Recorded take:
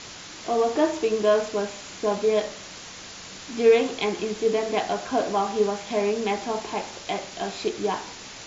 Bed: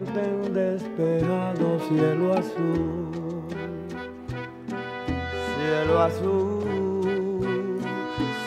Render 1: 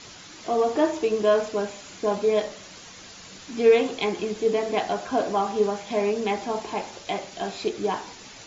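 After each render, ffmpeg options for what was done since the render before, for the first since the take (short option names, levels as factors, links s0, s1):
-af "afftdn=nr=6:nf=-41"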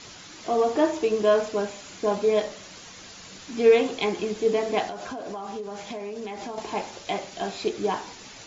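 -filter_complex "[0:a]asettb=1/sr,asplit=3[s0][s1][s2];[s0]atrim=end=4.864[s3];[s1]atrim=start=4.86:end=6.58,asetpts=PTS-STARTPTS,afade=t=in:d=0.004:c=qsin,afade=t=out:st=1.716:d=0.004:c=qsin,acompressor=threshold=0.0316:ratio=16:attack=3.2:release=140:knee=1:detection=peak[s4];[s2]atrim=start=6.576[s5];[s3][s4]acrossfade=d=0.004:c1=hsin:c2=qsin[s6];[s6][s5]acrossfade=d=0.004:c1=qsin:c2=hsin"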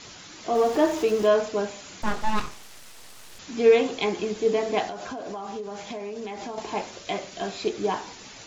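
-filter_complex "[0:a]asettb=1/sr,asplit=3[s0][s1][s2];[s0]atrim=end=0.554[s3];[s1]atrim=start=0.55:end=1.27,asetpts=PTS-STARTPTS,afade=t=in:d=0.004:c=qsin,afade=t=out:st=0.716:d=0.004:c=qsin,aeval=exprs='val(0)+0.5*0.02*sgn(val(0))':c=same[s4];[s2]atrim=start=1.266[s5];[s3][s4]acrossfade=d=0.004:c1=hsin:c2=qsin[s6];[s6][s5]acrossfade=d=0.004:c1=qsin:c2=hsin,asettb=1/sr,asplit=3[s7][s8][s9];[s7]atrim=end=2.024[s10];[s8]atrim=start=2.02:end=3.39,asetpts=PTS-STARTPTS,afade=t=in:d=0.004:c=qsin,afade=t=out:st=1.366:d=0.004:c=qsin,aeval=exprs='abs(val(0))':c=same[s11];[s9]atrim=start=3.386[s12];[s10][s11]acrossfade=d=0.004:c1=hsin:c2=qsin[s13];[s13][s12]acrossfade=d=0.004:c1=qsin:c2=hsin,asettb=1/sr,asplit=3[s14][s15][s16];[s14]atrim=end=6.844[s17];[s15]atrim=start=6.84:end=7.64,asetpts=PTS-STARTPTS,afade=t=in:d=0.004:c=qsin,afade=t=out:st=0.796:d=0.004:c=qsin,bandreject=f=840:w=6.2[s18];[s16]atrim=start=7.636[s19];[s17][s18]acrossfade=d=0.004:c1=hsin:c2=qsin[s20];[s20][s19]acrossfade=d=0.004:c1=qsin:c2=hsin"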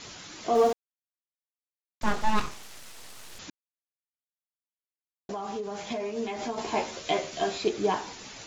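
-filter_complex "[0:a]asettb=1/sr,asplit=3[s0][s1][s2];[s0]atrim=end=5.894[s3];[s1]atrim=start=5.89:end=7.58,asetpts=PTS-STARTPTS,afade=t=in:d=0.004:c=qsin,afade=t=out:st=1.686:d=0.004:c=qsin,asplit=2[s4][s5];[s5]adelay=13,volume=0.75[s6];[s4][s6]amix=inputs=2:normalize=0,atrim=end_sample=74529[s7];[s2]atrim=start=7.576[s8];[s3][s7]acrossfade=d=0.004:c1=hsin:c2=qsin[s9];[s9][s8]acrossfade=d=0.004:c1=qsin:c2=hsin,asplit=5[s10][s11][s12][s13][s14];[s10]atrim=end=0.73,asetpts=PTS-STARTPTS,afade=t=out:st=0.726:d=0.004:c=hsin[s15];[s11]atrim=start=0.73:end=2.01,asetpts=PTS-STARTPTS,volume=0[s16];[s12]atrim=start=2.01:end=3.5,asetpts=PTS-STARTPTS,afade=t=in:d=0.004:c=hsin,afade=t=out:st=1.486:d=0.004:c=hsin[s17];[s13]atrim=start=3.5:end=5.29,asetpts=PTS-STARTPTS,volume=0[s18];[s14]atrim=start=5.29,asetpts=PTS-STARTPTS,afade=t=in:d=0.004:c=hsin[s19];[s15][s16][s17][s18][s19]concat=n=5:v=0:a=1"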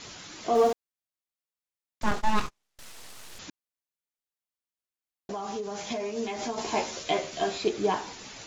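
-filter_complex "[0:a]asettb=1/sr,asplit=3[s0][s1][s2];[s0]atrim=end=2.114[s3];[s1]atrim=start=2.11:end=2.79,asetpts=PTS-STARTPTS,afade=t=in:d=0.004:c=qsin,afade=t=out:st=0.676:d=0.004:c=qsin,agate=range=0.0178:threshold=0.0224:ratio=16:release=100:detection=peak[s4];[s2]atrim=start=2.786[s5];[s3][s4]acrossfade=d=0.004:c1=hsin:c2=qsin[s6];[s6][s5]acrossfade=d=0.004:c1=qsin:c2=hsin,asettb=1/sr,asplit=3[s7][s8][s9];[s7]atrim=end=5.344[s10];[s8]atrim=start=5.34:end=7.04,asetpts=PTS-STARTPTS,afade=t=in:d=0.004:c=qsin,afade=t=out:st=1.696:d=0.004:c=qsin,lowpass=f=6700:t=q:w=1.8[s11];[s9]atrim=start=7.036[s12];[s10][s11]acrossfade=d=0.004:c1=hsin:c2=qsin[s13];[s13][s12]acrossfade=d=0.004:c1=qsin:c2=hsin"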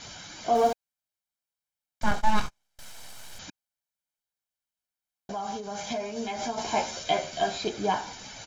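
-af "bandreject=f=2500:w=22,aecho=1:1:1.3:0.49"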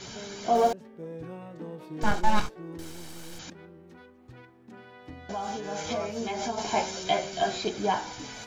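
-filter_complex "[1:a]volume=0.15[s0];[0:a][s0]amix=inputs=2:normalize=0"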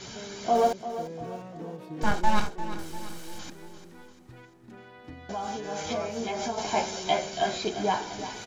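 -af "aecho=1:1:346|692|1038|1384|1730:0.251|0.121|0.0579|0.0278|0.0133"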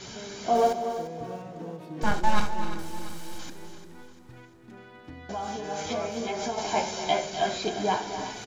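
-af "aecho=1:1:72|253|290:0.168|0.251|0.15"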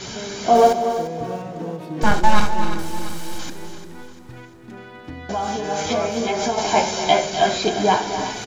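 -af "volume=2.82,alimiter=limit=0.794:level=0:latency=1"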